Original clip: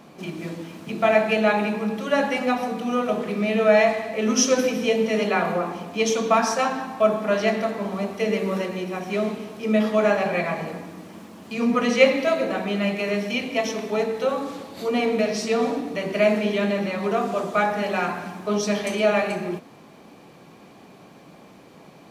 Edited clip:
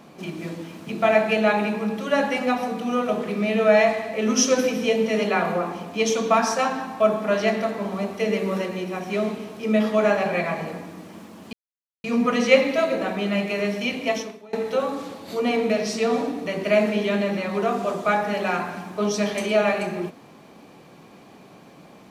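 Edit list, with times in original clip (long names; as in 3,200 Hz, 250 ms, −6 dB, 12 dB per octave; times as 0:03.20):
0:11.53: splice in silence 0.51 s
0:13.64–0:14.02: fade out quadratic, to −23.5 dB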